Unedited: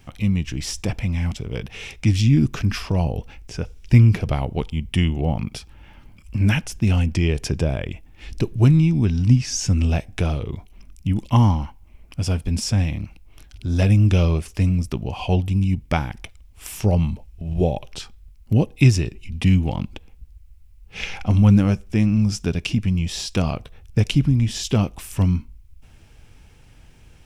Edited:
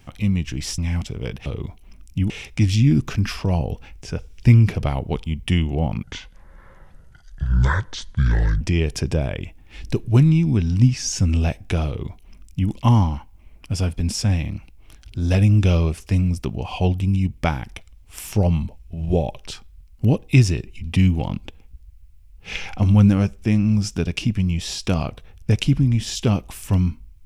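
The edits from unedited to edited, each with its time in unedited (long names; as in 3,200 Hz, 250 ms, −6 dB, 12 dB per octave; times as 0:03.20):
0:00.78–0:01.08: remove
0:05.49–0:07.09: play speed 62%
0:10.35–0:11.19: duplicate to 0:01.76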